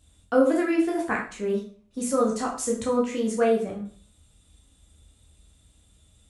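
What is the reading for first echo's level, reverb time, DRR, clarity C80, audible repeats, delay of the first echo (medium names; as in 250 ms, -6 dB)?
no echo, 0.45 s, -3.0 dB, 11.5 dB, no echo, no echo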